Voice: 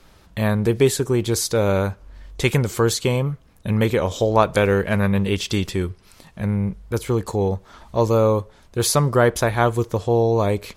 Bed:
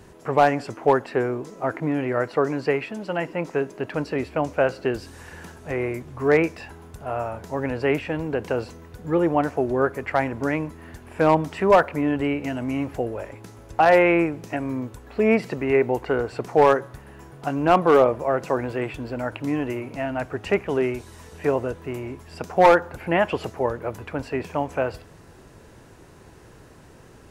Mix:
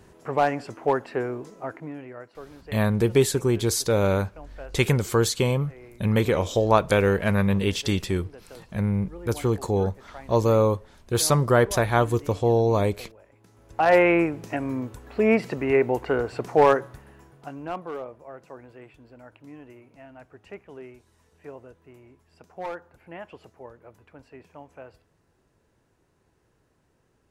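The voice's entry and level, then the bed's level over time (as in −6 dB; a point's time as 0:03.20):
2.35 s, −2.5 dB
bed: 0:01.47 −4.5 dB
0:02.37 −21 dB
0:13.23 −21 dB
0:13.95 −1 dB
0:16.78 −1 dB
0:18.00 −19.5 dB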